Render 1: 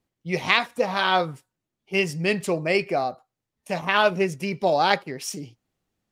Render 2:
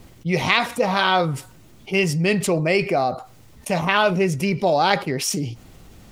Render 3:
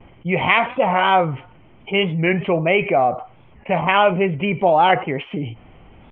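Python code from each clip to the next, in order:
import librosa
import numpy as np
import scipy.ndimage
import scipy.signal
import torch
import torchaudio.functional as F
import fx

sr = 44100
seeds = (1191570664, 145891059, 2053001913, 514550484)

y1 = fx.low_shelf(x, sr, hz=95.0, db=11.0)
y1 = fx.notch(y1, sr, hz=1700.0, q=19.0)
y1 = fx.env_flatten(y1, sr, amount_pct=50)
y2 = fx.vibrato(y1, sr, rate_hz=1.2, depth_cents=52.0)
y2 = scipy.signal.sosfilt(scipy.signal.cheby1(6, 6, 3200.0, 'lowpass', fs=sr, output='sos'), y2)
y2 = fx.record_warp(y2, sr, rpm=45.0, depth_cents=160.0)
y2 = y2 * librosa.db_to_amplitude(5.5)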